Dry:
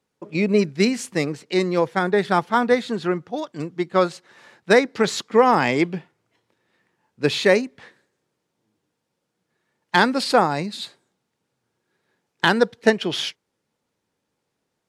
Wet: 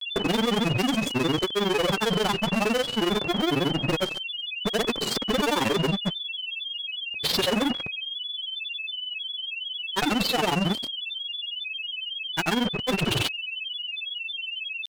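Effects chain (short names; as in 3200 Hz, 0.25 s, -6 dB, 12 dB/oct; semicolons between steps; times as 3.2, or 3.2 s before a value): Wiener smoothing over 25 samples; limiter -12.5 dBFS, peak gain reduction 9 dB; fuzz box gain 48 dB, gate -48 dBFS; whine 3000 Hz -20 dBFS; grains 65 ms, grains 22/s, pitch spread up and down by 3 st; gain -7.5 dB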